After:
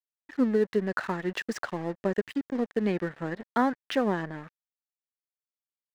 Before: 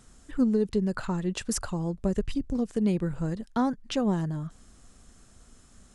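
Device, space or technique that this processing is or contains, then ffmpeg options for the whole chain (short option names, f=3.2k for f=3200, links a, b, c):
pocket radio on a weak battery: -af "highpass=290,lowpass=3.4k,aeval=exprs='sgn(val(0))*max(abs(val(0))-0.00398,0)':c=same,equalizer=f=1.8k:t=o:w=0.42:g=10.5,volume=4dB"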